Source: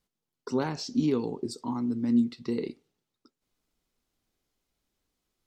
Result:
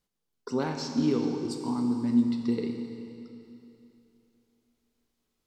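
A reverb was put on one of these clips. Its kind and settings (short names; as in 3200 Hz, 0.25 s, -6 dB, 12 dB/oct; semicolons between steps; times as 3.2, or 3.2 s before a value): Schroeder reverb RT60 2.9 s, combs from 29 ms, DRR 4 dB; gain -1 dB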